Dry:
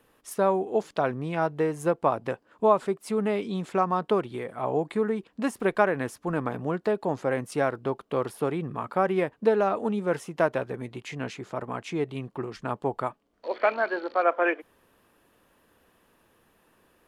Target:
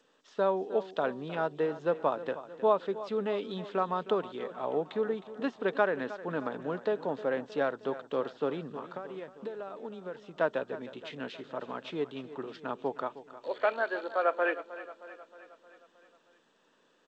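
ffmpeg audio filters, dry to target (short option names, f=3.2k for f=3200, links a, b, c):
-filter_complex "[0:a]asettb=1/sr,asplit=3[a][b][c];[a]atrim=end=8.704[d];[b]atrim=start=8.7:end=10.41,asetpts=PTS-STARTPTS,afade=t=in:d=0.004:c=qsin,afade=t=out:st=1.706:d=0.004:c=qsin,acompressor=threshold=-32dB:ratio=12[e];[c]atrim=start=10.406[f];[d][e]acrossfade=d=0.004:c1=hsin:c2=qsin[g];[g][f]acrossfade=d=0.004:c1=qsin:c2=hsin,highpass=f=190:w=0.5412,highpass=f=190:w=1.3066,equalizer=f=210:t=q:w=4:g=-6,equalizer=f=340:t=q:w=4:g=-6,equalizer=f=750:t=q:w=4:g=-5,equalizer=f=1.1k:t=q:w=4:g=-4,equalizer=f=2.2k:t=q:w=4:g=-9,equalizer=f=3.6k:t=q:w=4:g=5,lowpass=f=4.1k:w=0.5412,lowpass=f=4.1k:w=1.3066,aecho=1:1:312|624|936|1248|1560|1872:0.178|0.101|0.0578|0.0329|0.0188|0.0107,volume=-2dB" -ar 16000 -c:a g722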